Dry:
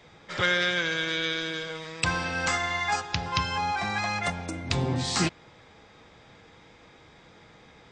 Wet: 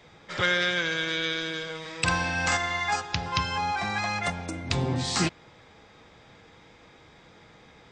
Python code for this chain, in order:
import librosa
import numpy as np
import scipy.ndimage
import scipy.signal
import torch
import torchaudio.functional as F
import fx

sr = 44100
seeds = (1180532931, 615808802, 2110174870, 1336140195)

y = fx.doubler(x, sr, ms=47.0, db=-3.5, at=(1.81, 2.57))